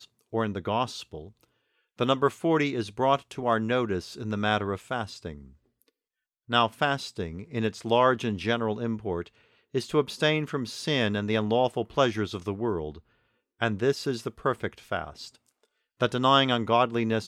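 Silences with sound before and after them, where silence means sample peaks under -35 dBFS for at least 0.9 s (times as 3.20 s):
5.38–6.50 s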